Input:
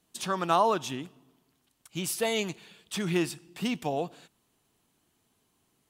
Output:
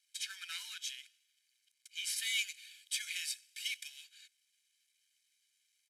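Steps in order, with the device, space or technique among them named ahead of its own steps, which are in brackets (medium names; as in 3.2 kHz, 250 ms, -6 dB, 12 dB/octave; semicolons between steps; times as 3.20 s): early wireless headset (high-pass 280 Hz 24 dB/octave; CVSD coder 64 kbps); elliptic high-pass 1.9 kHz, stop band 60 dB; treble shelf 10 kHz -6 dB; comb 1.3 ms, depth 97%; 2.16–3.88 s: treble shelf 6.2 kHz +8 dB; trim -3.5 dB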